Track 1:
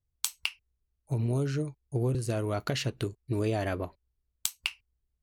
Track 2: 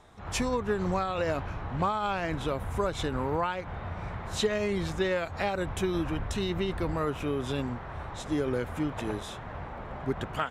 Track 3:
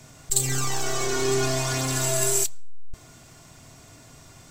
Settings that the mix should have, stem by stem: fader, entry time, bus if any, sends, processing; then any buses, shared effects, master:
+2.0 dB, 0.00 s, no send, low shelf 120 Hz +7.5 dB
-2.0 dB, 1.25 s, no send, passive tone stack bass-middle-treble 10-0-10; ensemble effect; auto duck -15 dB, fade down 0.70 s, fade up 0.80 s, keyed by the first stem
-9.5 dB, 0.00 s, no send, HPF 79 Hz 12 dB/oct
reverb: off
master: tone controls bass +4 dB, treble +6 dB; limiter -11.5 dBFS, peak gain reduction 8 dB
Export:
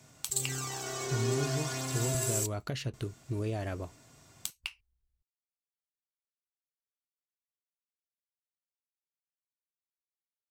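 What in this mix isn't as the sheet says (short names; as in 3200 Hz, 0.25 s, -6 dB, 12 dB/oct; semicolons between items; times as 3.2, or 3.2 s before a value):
stem 1 +2.0 dB -> -7.0 dB; stem 2: muted; master: missing tone controls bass +4 dB, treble +6 dB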